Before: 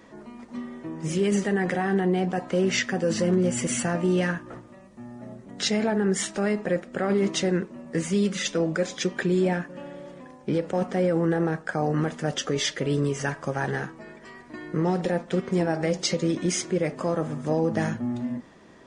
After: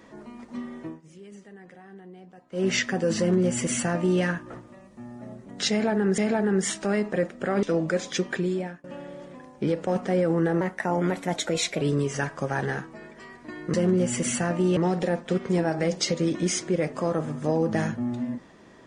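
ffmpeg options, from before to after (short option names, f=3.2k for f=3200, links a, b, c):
-filter_complex "[0:a]asplit=10[a][b][c][d][e][f][g][h][i][j];[a]atrim=end=1.01,asetpts=PTS-STARTPTS,afade=t=out:st=0.86:d=0.15:silence=0.0749894[k];[b]atrim=start=1.01:end=2.51,asetpts=PTS-STARTPTS,volume=-22.5dB[l];[c]atrim=start=2.51:end=6.182,asetpts=PTS-STARTPTS,afade=t=in:d=0.15:silence=0.0749894[m];[d]atrim=start=5.708:end=7.162[n];[e]atrim=start=8.488:end=9.7,asetpts=PTS-STARTPTS,afade=t=out:st=0.632:d=0.58:silence=0.0707946[o];[f]atrim=start=9.7:end=11.474,asetpts=PTS-STARTPTS,afade=t=in:d=0.004:c=hsin:silence=0.0707946[p];[g]atrim=start=11.47:end=12.87,asetpts=PTS-STARTPTS,asetrate=51156,aresample=44100,atrim=end_sample=53224,asetpts=PTS-STARTPTS[q];[h]atrim=start=12.866:end=14.792[r];[i]atrim=start=3.178:end=4.212[s];[j]atrim=start=14.788[t];[k][l][m]concat=n=3:v=0:a=1[u];[u][n]acrossfade=d=0.004:c1=hsin:c2=hsin[v];[o][p]concat=n=2:v=0:a=1[w];[v][w]acrossfade=d=0.004:c1=hsin:c2=hsin[x];[x][q]acrossfade=d=0.004:c1=hsin:c2=hsin[y];[y][r]acrossfade=d=0.004:c1=hsin:c2=hsin[z];[z][s]acrossfade=d=0.004:c1=hsin:c2=hsin[aa];[aa][t]acrossfade=d=0.004:c1=hsin:c2=hsin"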